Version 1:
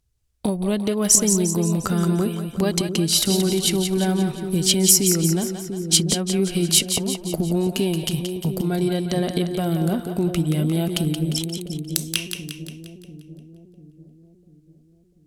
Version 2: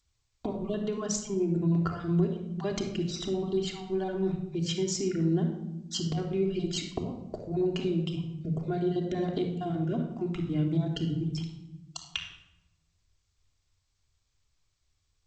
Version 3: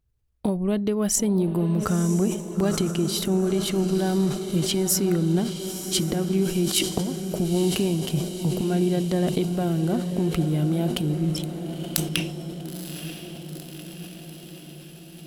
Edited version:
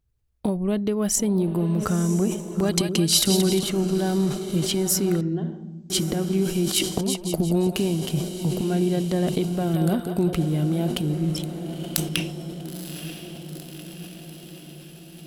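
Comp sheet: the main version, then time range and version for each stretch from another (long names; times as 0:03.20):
3
0:02.69–0:03.63: punch in from 1
0:05.21–0:05.90: punch in from 2
0:07.01–0:07.76: punch in from 1
0:09.74–0:10.33: punch in from 1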